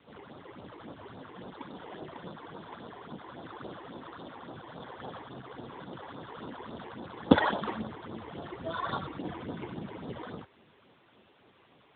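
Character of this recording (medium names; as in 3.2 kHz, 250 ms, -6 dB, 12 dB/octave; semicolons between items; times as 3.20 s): aliases and images of a low sample rate 2.5 kHz, jitter 0%; phasing stages 8, 3.6 Hz, lowest notch 170–2500 Hz; a quantiser's noise floor 10-bit, dither triangular; AMR-NB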